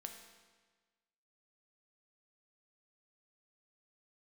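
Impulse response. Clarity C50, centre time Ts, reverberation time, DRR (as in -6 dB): 6.0 dB, 34 ms, 1.4 s, 3.5 dB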